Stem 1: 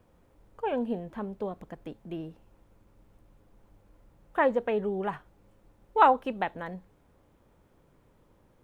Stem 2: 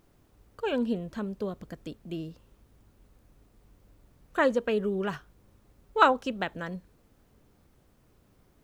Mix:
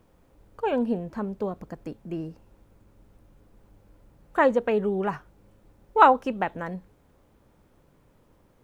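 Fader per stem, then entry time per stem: +1.5, -5.5 dB; 0.00, 0.00 s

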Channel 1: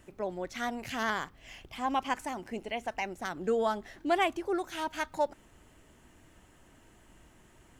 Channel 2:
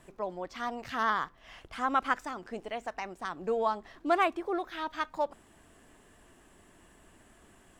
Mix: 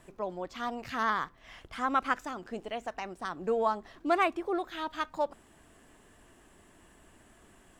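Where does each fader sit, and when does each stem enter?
-15.5, 0.0 dB; 0.00, 0.00 s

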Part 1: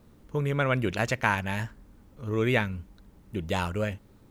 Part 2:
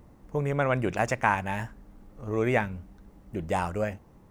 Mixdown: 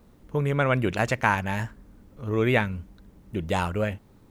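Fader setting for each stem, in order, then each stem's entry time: 0.0, -7.5 dB; 0.00, 0.00 s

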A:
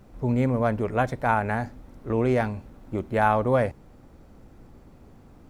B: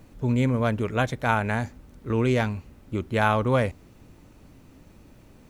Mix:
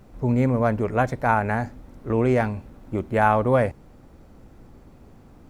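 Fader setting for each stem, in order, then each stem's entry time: +1.5, -16.0 dB; 0.00, 0.00 s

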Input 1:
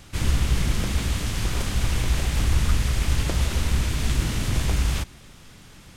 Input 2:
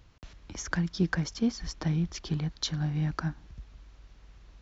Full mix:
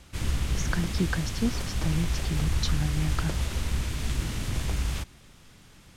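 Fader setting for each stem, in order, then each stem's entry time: -6.0, -0.5 dB; 0.00, 0.00 s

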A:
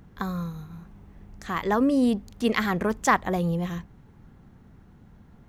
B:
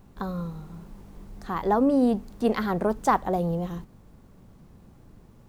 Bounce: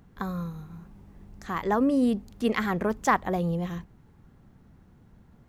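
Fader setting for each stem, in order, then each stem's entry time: -4.5, -12.0 dB; 0.00, 0.00 s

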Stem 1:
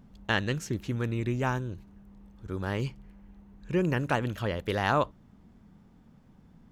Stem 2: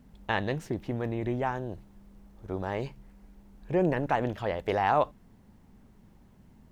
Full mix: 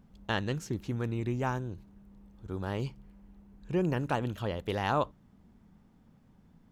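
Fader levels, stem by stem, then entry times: -4.5, -13.0 dB; 0.00, 0.00 s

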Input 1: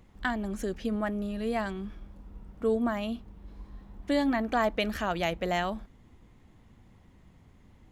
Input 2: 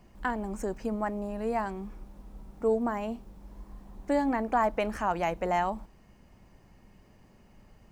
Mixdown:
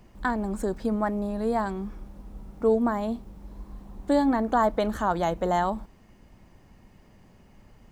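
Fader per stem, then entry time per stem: -4.5, +2.0 dB; 0.00, 0.00 s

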